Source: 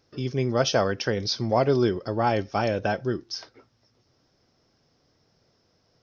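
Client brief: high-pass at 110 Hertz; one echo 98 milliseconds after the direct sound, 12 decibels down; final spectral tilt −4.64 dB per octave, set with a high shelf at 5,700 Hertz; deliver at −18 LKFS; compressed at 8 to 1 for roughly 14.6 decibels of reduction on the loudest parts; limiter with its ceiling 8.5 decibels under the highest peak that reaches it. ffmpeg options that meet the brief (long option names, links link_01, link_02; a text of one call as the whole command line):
ffmpeg -i in.wav -af "highpass=110,highshelf=frequency=5700:gain=8.5,acompressor=threshold=-32dB:ratio=8,alimiter=level_in=4dB:limit=-24dB:level=0:latency=1,volume=-4dB,aecho=1:1:98:0.251,volume=20.5dB" out.wav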